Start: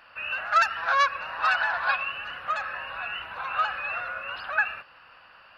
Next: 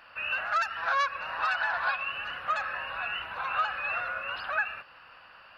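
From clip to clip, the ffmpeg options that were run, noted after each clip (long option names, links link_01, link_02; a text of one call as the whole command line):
ffmpeg -i in.wav -af "alimiter=limit=-18.5dB:level=0:latency=1:release=293" out.wav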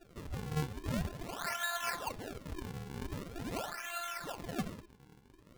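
ffmpeg -i in.wav -af "afftfilt=real='hypot(re,im)*cos(PI*b)':imag='0':win_size=512:overlap=0.75,acrusher=samples=40:mix=1:aa=0.000001:lfo=1:lforange=64:lforate=0.44,bandreject=frequency=207.1:width_type=h:width=4,bandreject=frequency=414.2:width_type=h:width=4,bandreject=frequency=621.3:width_type=h:width=4,bandreject=frequency=828.4:width_type=h:width=4,bandreject=frequency=1035.5:width_type=h:width=4,bandreject=frequency=1242.6:width_type=h:width=4,bandreject=frequency=1449.7:width_type=h:width=4,bandreject=frequency=1656.8:width_type=h:width=4,bandreject=frequency=1863.9:width_type=h:width=4,bandreject=frequency=2071:width_type=h:width=4,bandreject=frequency=2278.1:width_type=h:width=4,bandreject=frequency=2485.2:width_type=h:width=4,bandreject=frequency=2692.3:width_type=h:width=4,bandreject=frequency=2899.4:width_type=h:width=4,bandreject=frequency=3106.5:width_type=h:width=4,bandreject=frequency=3313.6:width_type=h:width=4,bandreject=frequency=3520.7:width_type=h:width=4,bandreject=frequency=3727.8:width_type=h:width=4,bandreject=frequency=3934.9:width_type=h:width=4,bandreject=frequency=4142:width_type=h:width=4,bandreject=frequency=4349.1:width_type=h:width=4,bandreject=frequency=4556.2:width_type=h:width=4,bandreject=frequency=4763.3:width_type=h:width=4,bandreject=frequency=4970.4:width_type=h:width=4,bandreject=frequency=5177.5:width_type=h:width=4,bandreject=frequency=5384.6:width_type=h:width=4,bandreject=frequency=5591.7:width_type=h:width=4,bandreject=frequency=5798.8:width_type=h:width=4,volume=-4dB" out.wav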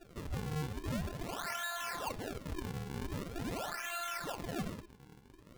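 ffmpeg -i in.wav -af "alimiter=level_in=8.5dB:limit=-24dB:level=0:latency=1:release=17,volume=-8.5dB,volume=2.5dB" out.wav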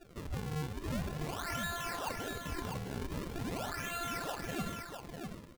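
ffmpeg -i in.wav -af "aecho=1:1:650:0.531" out.wav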